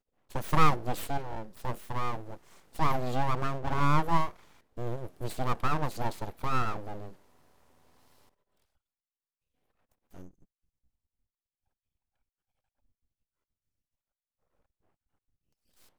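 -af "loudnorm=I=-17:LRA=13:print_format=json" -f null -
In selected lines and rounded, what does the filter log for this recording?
"input_i" : "-32.0",
"input_tp" : "-8.8",
"input_lra" : "3.7",
"input_thresh" : "-43.6",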